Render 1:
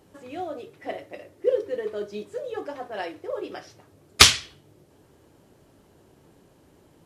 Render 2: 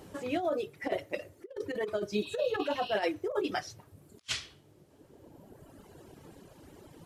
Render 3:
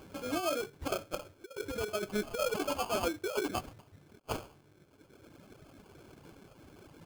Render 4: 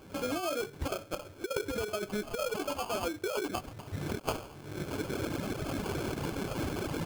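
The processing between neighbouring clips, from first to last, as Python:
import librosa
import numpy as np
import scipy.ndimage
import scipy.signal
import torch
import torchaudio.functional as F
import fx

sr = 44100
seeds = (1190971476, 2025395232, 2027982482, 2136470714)

y1 = fx.dereverb_blind(x, sr, rt60_s=1.5)
y1 = fx.spec_repair(y1, sr, seeds[0], start_s=2.25, length_s=0.67, low_hz=2500.0, high_hz=5700.0, source='both')
y1 = fx.over_compress(y1, sr, threshold_db=-34.0, ratio=-0.5)
y2 = fx.sample_hold(y1, sr, seeds[1], rate_hz=1900.0, jitter_pct=0)
y2 = y2 * 10.0 ** (-2.0 / 20.0)
y3 = fx.recorder_agc(y2, sr, target_db=-25.5, rise_db_per_s=59.0, max_gain_db=30)
y3 = y3 * 10.0 ** (-2.0 / 20.0)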